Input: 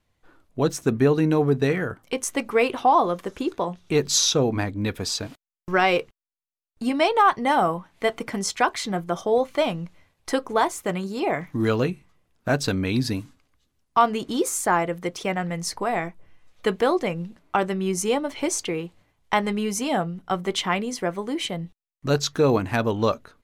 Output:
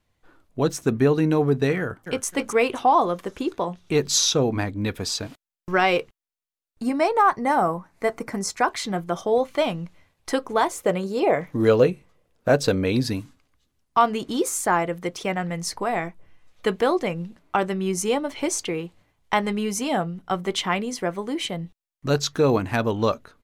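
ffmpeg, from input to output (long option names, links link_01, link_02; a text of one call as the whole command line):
ffmpeg -i in.wav -filter_complex "[0:a]asplit=2[link_01][link_02];[link_02]afade=type=in:start_time=1.8:duration=0.01,afade=type=out:start_time=2.26:duration=0.01,aecho=0:1:260|520|780:0.421697|0.105424|0.026356[link_03];[link_01][link_03]amix=inputs=2:normalize=0,asettb=1/sr,asplit=3[link_04][link_05][link_06];[link_04]atrim=end=6.834[link_07];[link_05]atrim=start=6.83:end=8.68,asetpts=PTS-STARTPTS,afade=type=in:duration=0.004:curve=qsin,afade=type=out:start_time=1.846:duration=0.004:curve=qsin,equalizer=frequency=3200:width_type=o:width=0.57:gain=-13.5[link_08];[link_06]atrim=start=8.676[link_09];[link_07][link_08]acrossfade=duration=0.004:curve1=hsin:curve2=qsin[link_10];[link_10][link_09]acrossfade=duration=0.004:curve1=qsin:curve2=hsin,asettb=1/sr,asplit=3[link_11][link_12][link_13];[link_11]atrim=end=10.714[link_14];[link_12]atrim=start=10.71:end=13.05,asetpts=PTS-STARTPTS,afade=type=in:duration=0.004:curve=qsin,afade=type=out:start_time=2.336:duration=0.004:curve=qsin,equalizer=frequency=510:width=2.4:gain=10.5[link_15];[link_13]atrim=start=13.046[link_16];[link_14][link_15]acrossfade=duration=0.004:curve1=hsin:curve2=qsin[link_17];[link_17][link_16]acrossfade=duration=0.004:curve1=qsin:curve2=hsin" out.wav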